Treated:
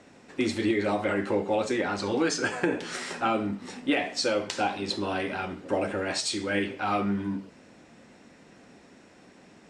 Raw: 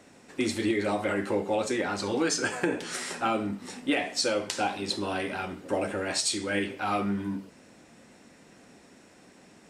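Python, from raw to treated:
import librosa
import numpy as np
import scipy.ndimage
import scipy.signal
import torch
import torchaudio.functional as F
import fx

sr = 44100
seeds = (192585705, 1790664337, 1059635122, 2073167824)

y = fx.air_absorb(x, sr, metres=61.0)
y = y * librosa.db_to_amplitude(1.5)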